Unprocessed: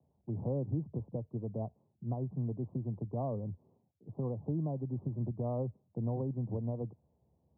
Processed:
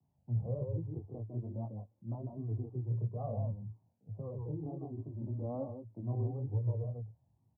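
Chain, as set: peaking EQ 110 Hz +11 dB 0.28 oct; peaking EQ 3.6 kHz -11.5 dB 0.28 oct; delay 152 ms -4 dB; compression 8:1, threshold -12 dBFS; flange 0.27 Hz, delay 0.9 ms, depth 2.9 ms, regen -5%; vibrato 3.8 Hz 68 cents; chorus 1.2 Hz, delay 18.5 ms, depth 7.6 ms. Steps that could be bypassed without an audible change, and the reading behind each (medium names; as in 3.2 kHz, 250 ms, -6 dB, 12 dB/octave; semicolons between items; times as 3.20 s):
peaking EQ 3.6 kHz: input has nothing above 760 Hz; compression, threshold -12 dBFS: peak at its input -18.5 dBFS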